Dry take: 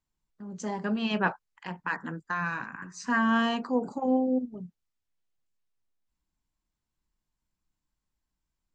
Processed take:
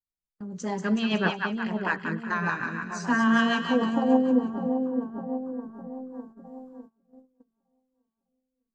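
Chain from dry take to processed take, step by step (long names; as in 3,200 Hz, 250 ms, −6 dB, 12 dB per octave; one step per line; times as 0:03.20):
on a send: echo with a time of its own for lows and highs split 980 Hz, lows 605 ms, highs 185 ms, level −5 dB
on the sum: noise gate −50 dBFS, range −20 dB
rotating-speaker cabinet horn 6.7 Hz, later 0.75 Hz, at 0:05.69
level +5 dB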